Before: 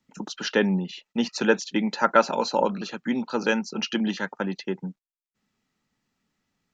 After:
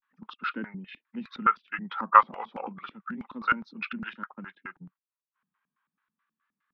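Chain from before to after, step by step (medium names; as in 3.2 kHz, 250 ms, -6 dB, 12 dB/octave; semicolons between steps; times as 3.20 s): high-order bell 2.2 kHz +14 dB 2.4 oct; LFO band-pass square 4.7 Hz 250–1500 Hz; vibrato 0.33 Hz 79 cents; formant shift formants -3 st; trim -7 dB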